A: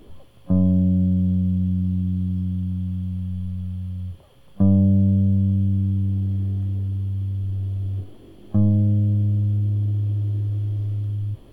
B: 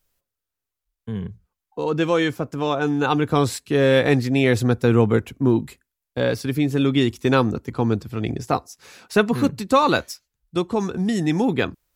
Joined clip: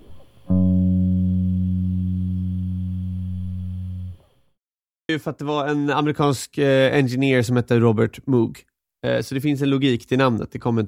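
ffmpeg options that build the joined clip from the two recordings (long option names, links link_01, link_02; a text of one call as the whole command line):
ffmpeg -i cue0.wav -i cue1.wav -filter_complex "[0:a]apad=whole_dur=10.87,atrim=end=10.87,asplit=2[link_01][link_02];[link_01]atrim=end=4.58,asetpts=PTS-STARTPTS,afade=type=out:start_time=3.78:duration=0.8:curve=qsin[link_03];[link_02]atrim=start=4.58:end=5.09,asetpts=PTS-STARTPTS,volume=0[link_04];[1:a]atrim=start=2.22:end=8,asetpts=PTS-STARTPTS,afade=type=in:duration=0.004:curve=hsin[link_05];[link_03][link_04][link_05]concat=n=3:v=0:a=1" out.wav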